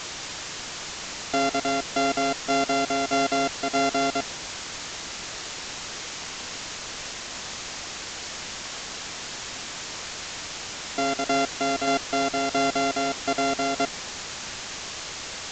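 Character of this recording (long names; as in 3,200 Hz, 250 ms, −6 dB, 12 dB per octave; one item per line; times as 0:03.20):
a buzz of ramps at a fixed pitch in blocks of 64 samples
tremolo saw down 1.6 Hz, depth 40%
a quantiser's noise floor 6 bits, dither triangular
mu-law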